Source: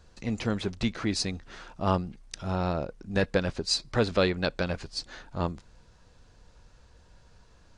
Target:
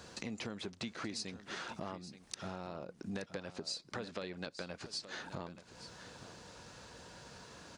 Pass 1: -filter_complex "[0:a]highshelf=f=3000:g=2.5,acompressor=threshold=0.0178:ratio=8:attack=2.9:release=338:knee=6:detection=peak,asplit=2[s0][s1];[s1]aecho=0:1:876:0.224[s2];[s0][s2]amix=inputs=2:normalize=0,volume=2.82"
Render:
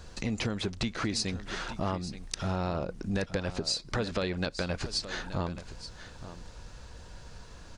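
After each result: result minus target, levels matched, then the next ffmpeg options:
compression: peak gain reduction -11.5 dB; 125 Hz band +3.5 dB
-filter_complex "[0:a]highshelf=f=3000:g=2.5,acompressor=threshold=0.00473:ratio=8:attack=2.9:release=338:knee=6:detection=peak,asplit=2[s0][s1];[s1]aecho=0:1:876:0.224[s2];[s0][s2]amix=inputs=2:normalize=0,volume=2.82"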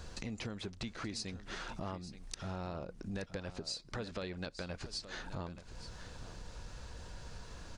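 125 Hz band +4.5 dB
-filter_complex "[0:a]highpass=160,highshelf=f=3000:g=2.5,acompressor=threshold=0.00473:ratio=8:attack=2.9:release=338:knee=6:detection=peak,asplit=2[s0][s1];[s1]aecho=0:1:876:0.224[s2];[s0][s2]amix=inputs=2:normalize=0,volume=2.82"

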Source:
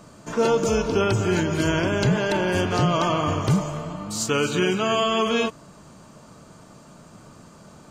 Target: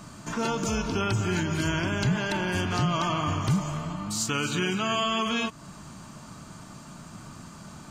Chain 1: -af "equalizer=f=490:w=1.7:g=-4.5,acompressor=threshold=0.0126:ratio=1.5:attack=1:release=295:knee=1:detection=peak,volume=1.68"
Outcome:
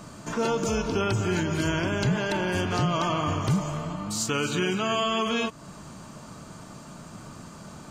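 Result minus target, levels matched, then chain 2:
500 Hz band +3.5 dB
-af "equalizer=f=490:w=1.7:g=-11.5,acompressor=threshold=0.0126:ratio=1.5:attack=1:release=295:knee=1:detection=peak,volume=1.68"

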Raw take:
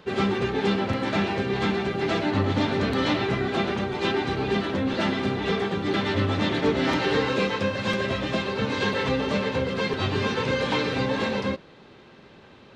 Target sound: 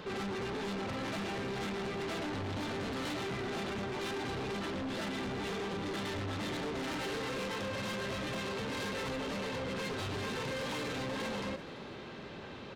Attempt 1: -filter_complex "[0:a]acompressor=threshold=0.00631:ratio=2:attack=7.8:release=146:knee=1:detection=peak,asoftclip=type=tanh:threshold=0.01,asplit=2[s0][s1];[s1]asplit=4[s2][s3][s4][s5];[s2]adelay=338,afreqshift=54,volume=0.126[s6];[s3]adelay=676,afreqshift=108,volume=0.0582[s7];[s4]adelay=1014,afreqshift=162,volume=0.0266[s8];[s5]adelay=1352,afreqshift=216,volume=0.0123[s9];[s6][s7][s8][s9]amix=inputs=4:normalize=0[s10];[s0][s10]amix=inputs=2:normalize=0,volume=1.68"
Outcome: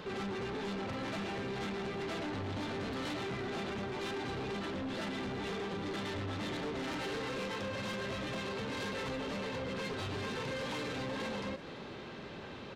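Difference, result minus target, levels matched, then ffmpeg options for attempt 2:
compression: peak gain reduction +4 dB
-filter_complex "[0:a]acompressor=threshold=0.0158:ratio=2:attack=7.8:release=146:knee=1:detection=peak,asoftclip=type=tanh:threshold=0.01,asplit=2[s0][s1];[s1]asplit=4[s2][s3][s4][s5];[s2]adelay=338,afreqshift=54,volume=0.126[s6];[s3]adelay=676,afreqshift=108,volume=0.0582[s7];[s4]adelay=1014,afreqshift=162,volume=0.0266[s8];[s5]adelay=1352,afreqshift=216,volume=0.0123[s9];[s6][s7][s8][s9]amix=inputs=4:normalize=0[s10];[s0][s10]amix=inputs=2:normalize=0,volume=1.68"

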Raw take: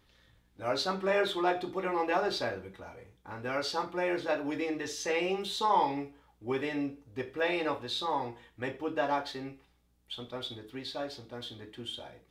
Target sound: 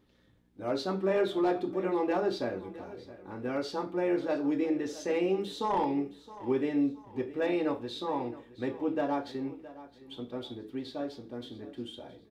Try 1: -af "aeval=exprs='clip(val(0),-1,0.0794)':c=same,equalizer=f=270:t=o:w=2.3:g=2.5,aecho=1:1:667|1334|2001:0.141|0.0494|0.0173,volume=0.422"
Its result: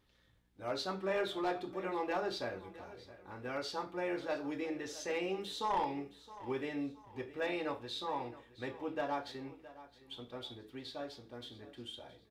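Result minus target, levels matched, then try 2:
250 Hz band -3.5 dB
-af "aeval=exprs='clip(val(0),-1,0.0794)':c=same,equalizer=f=270:t=o:w=2.3:g=14,aecho=1:1:667|1334|2001:0.141|0.0494|0.0173,volume=0.422"

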